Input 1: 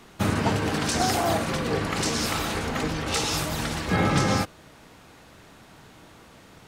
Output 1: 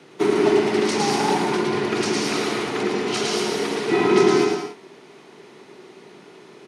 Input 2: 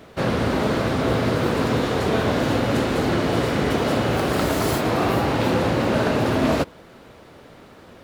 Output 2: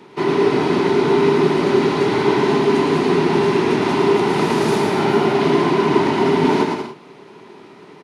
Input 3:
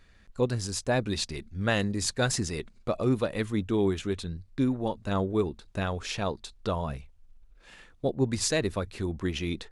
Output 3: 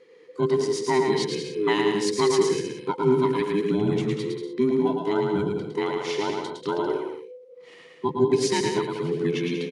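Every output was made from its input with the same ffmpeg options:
-af "afftfilt=real='real(if(between(b,1,1008),(2*floor((b-1)/24)+1)*24-b,b),0)':imag='imag(if(between(b,1,1008),(2*floor((b-1)/24)+1)*24-b,b),0)*if(between(b,1,1008),-1,1)':win_size=2048:overlap=0.75,highpass=f=140:w=0.5412,highpass=f=140:w=1.3066,equalizer=f=150:t=q:w=4:g=4,equalizer=f=390:t=q:w=4:g=9,equalizer=f=1.5k:t=q:w=4:g=-3,equalizer=f=2.2k:t=q:w=4:g=3,equalizer=f=7.7k:t=q:w=4:g=-7,lowpass=f=9.8k:w=0.5412,lowpass=f=9.8k:w=1.3066,aecho=1:1:110|187|240.9|278.6|305:0.631|0.398|0.251|0.158|0.1"

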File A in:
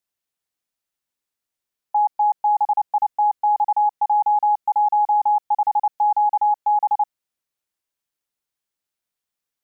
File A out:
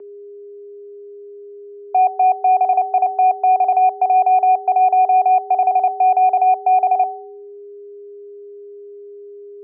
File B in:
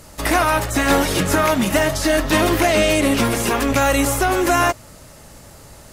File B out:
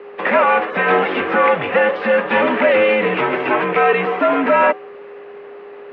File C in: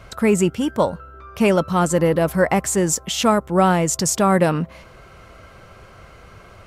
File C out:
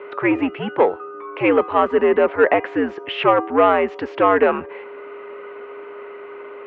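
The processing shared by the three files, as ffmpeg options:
-af "bandreject=f=422.9:t=h:w=4,bandreject=f=845.8:t=h:w=4,bandreject=f=1.2687k:t=h:w=4,bandreject=f=1.6916k:t=h:w=4,bandreject=f=2.1145k:t=h:w=4,bandreject=f=2.5374k:t=h:w=4,bandreject=f=2.9603k:t=h:w=4,bandreject=f=3.3832k:t=h:w=4,bandreject=f=3.8061k:t=h:w=4,bandreject=f=4.229k:t=h:w=4,bandreject=f=4.6519k:t=h:w=4,bandreject=f=5.0748k:t=h:w=4,bandreject=f=5.4977k:t=h:w=4,bandreject=f=5.9206k:t=h:w=4,bandreject=f=6.3435k:t=h:w=4,bandreject=f=6.7664k:t=h:w=4,bandreject=f=7.1893k:t=h:w=4,bandreject=f=7.6122k:t=h:w=4,bandreject=f=8.0351k:t=h:w=4,bandreject=f=8.458k:t=h:w=4,bandreject=f=8.8809k:t=h:w=4,bandreject=f=9.3038k:t=h:w=4,bandreject=f=9.7267k:t=h:w=4,bandreject=f=10.1496k:t=h:w=4,bandreject=f=10.5725k:t=h:w=4,bandreject=f=10.9954k:t=h:w=4,bandreject=f=11.4183k:t=h:w=4,bandreject=f=11.8412k:t=h:w=4,bandreject=f=12.2641k:t=h:w=4,bandreject=f=12.687k:t=h:w=4,bandreject=f=13.1099k:t=h:w=4,bandreject=f=13.5328k:t=h:w=4,bandreject=f=13.9557k:t=h:w=4,bandreject=f=14.3786k:t=h:w=4,bandreject=f=14.8015k:t=h:w=4,bandreject=f=15.2244k:t=h:w=4,bandreject=f=15.6473k:t=h:w=4,bandreject=f=16.0702k:t=h:w=4,bandreject=f=16.4931k:t=h:w=4,acontrast=39,aeval=exprs='0.841*(cos(1*acos(clip(val(0)/0.841,-1,1)))-cos(1*PI/2))+0.0376*(cos(5*acos(clip(val(0)/0.841,-1,1)))-cos(5*PI/2))':c=same,aeval=exprs='val(0)+0.0251*sin(2*PI*500*n/s)':c=same,highpass=f=410:t=q:w=0.5412,highpass=f=410:t=q:w=1.307,lowpass=f=2.8k:t=q:w=0.5176,lowpass=f=2.8k:t=q:w=0.7071,lowpass=f=2.8k:t=q:w=1.932,afreqshift=-93,volume=-1dB"

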